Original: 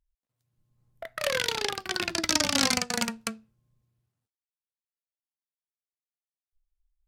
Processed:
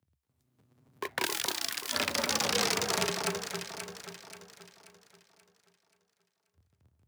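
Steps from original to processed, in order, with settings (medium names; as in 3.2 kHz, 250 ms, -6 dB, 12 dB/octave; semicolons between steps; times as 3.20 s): cycle switcher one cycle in 2, inverted; 1.25–1.93 s: pre-emphasis filter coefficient 0.9; compression 4:1, threshold -28 dBFS, peak gain reduction 9 dB; overload inside the chain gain 21.5 dB; frequency shift +67 Hz; echo whose repeats swap between lows and highs 266 ms, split 1.5 kHz, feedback 64%, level -3.5 dB; trim +3 dB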